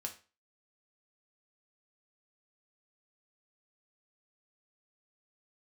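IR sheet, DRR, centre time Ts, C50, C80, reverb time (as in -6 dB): 2.5 dB, 11 ms, 12.5 dB, 18.0 dB, 0.35 s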